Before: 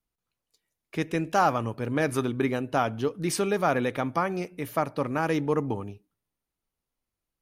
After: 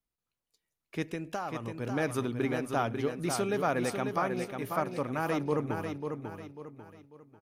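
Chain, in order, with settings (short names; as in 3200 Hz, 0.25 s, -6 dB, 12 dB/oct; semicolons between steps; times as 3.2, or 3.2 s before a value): 1.09–1.78 compressor 12:1, threshold -27 dBFS, peak gain reduction 10.5 dB; feedback echo 0.544 s, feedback 36%, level -6 dB; gain -5 dB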